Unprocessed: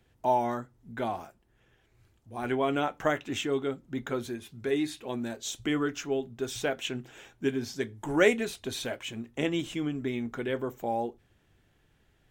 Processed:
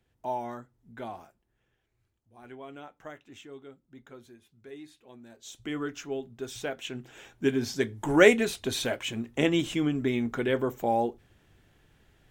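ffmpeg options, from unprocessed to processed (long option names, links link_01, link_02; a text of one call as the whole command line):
ffmpeg -i in.wav -af "volume=14dB,afade=type=out:start_time=1.23:duration=1.13:silence=0.334965,afade=type=in:start_time=5.27:duration=0.57:silence=0.237137,afade=type=in:start_time=6.87:duration=0.82:silence=0.375837" out.wav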